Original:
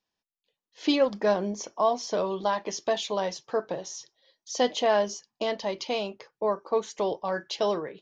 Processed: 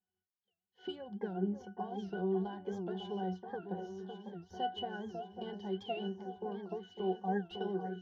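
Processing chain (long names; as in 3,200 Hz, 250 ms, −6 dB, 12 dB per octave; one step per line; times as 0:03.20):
stylus tracing distortion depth 0.031 ms
downward compressor, threshold −27 dBFS, peak gain reduction 10 dB
resonances in every octave F#, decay 0.2 s
delay that swaps between a low-pass and a high-pass 552 ms, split 1,500 Hz, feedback 75%, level −7.5 dB
wow of a warped record 78 rpm, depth 160 cents
level +8 dB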